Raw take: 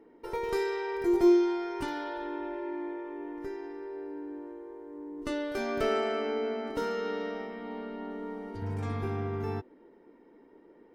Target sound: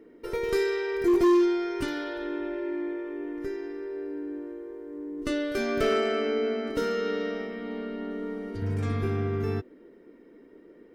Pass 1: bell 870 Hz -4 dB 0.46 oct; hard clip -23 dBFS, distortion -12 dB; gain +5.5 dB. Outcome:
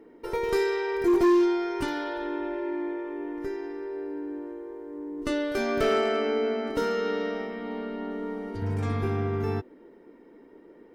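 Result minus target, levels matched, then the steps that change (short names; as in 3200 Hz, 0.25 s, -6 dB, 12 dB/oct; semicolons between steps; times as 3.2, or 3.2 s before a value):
1000 Hz band +3.0 dB
change: bell 870 Hz -14 dB 0.46 oct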